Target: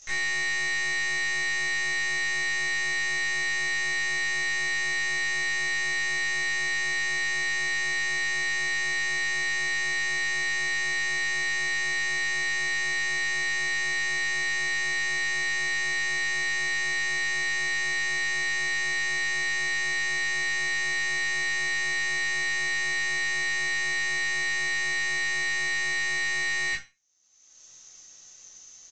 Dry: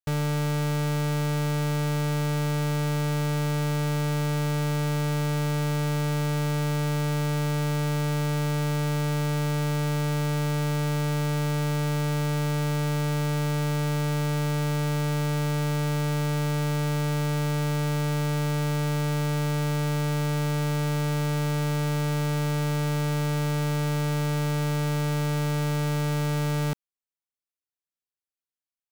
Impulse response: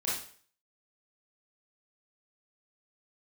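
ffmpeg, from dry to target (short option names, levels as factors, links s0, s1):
-filter_complex "[0:a]acrossover=split=3100[s0][s1];[s1]acompressor=threshold=0.00398:ratio=4:attack=1:release=60[s2];[s0][s2]amix=inputs=2:normalize=0,bass=f=250:g=1,treble=f=4000:g=5,acompressor=mode=upward:threshold=0.0282:ratio=2.5,aeval=exprs='val(0)*sin(2*PI*2000*n/s)':c=same,lowpass=f=6200:t=q:w=15,aeval=exprs='0.2*(cos(1*acos(clip(val(0)/0.2,-1,1)))-cos(1*PI/2))+0.0282*(cos(8*acos(clip(val(0)/0.2,-1,1)))-cos(8*PI/2))':c=same,aresample=16000,asoftclip=type=tanh:threshold=0.0422,aresample=44100[s3];[1:a]atrim=start_sample=2205,asetrate=79380,aresample=44100[s4];[s3][s4]afir=irnorm=-1:irlink=0,volume=1.5"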